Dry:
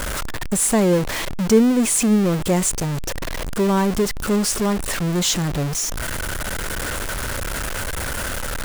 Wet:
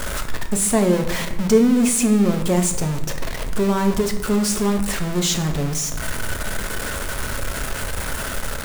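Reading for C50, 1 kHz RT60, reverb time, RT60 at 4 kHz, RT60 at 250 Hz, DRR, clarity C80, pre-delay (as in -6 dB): 9.5 dB, 0.90 s, 0.95 s, 0.60 s, 1.4 s, 4.5 dB, 12.0 dB, 5 ms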